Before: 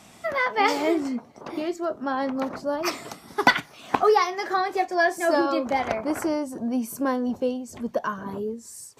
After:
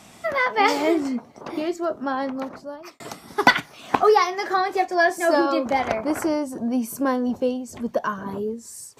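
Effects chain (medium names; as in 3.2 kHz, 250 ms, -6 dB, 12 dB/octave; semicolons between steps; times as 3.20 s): 1.99–3.00 s: fade out; 5.10–5.66 s: high-pass 150 Hz; trim +2.5 dB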